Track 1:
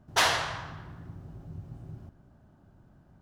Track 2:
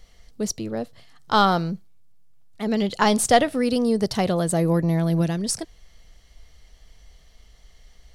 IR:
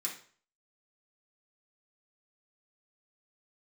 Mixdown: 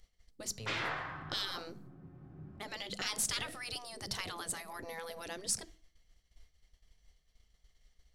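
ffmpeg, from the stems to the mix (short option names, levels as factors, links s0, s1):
-filter_complex "[0:a]lowpass=1900,adelay=500,volume=1.26,asplit=2[s0][s1];[s1]volume=0.473[s2];[1:a]agate=range=0.0224:threshold=0.0126:ratio=3:detection=peak,volume=0.447,asplit=3[s3][s4][s5];[s4]volume=0.15[s6];[s5]apad=whole_len=163988[s7];[s0][s7]sidechaincompress=threshold=0.00631:ratio=4:attack=39:release=1060[s8];[2:a]atrim=start_sample=2205[s9];[s2][s6]amix=inputs=2:normalize=0[s10];[s10][s9]afir=irnorm=-1:irlink=0[s11];[s8][s3][s11]amix=inputs=3:normalize=0,afftfilt=real='re*lt(hypot(re,im),0.0891)':imag='im*lt(hypot(re,im),0.0891)':win_size=1024:overlap=0.75,equalizer=f=720:t=o:w=1.8:g=-3,acompressor=mode=upward:threshold=0.00158:ratio=2.5"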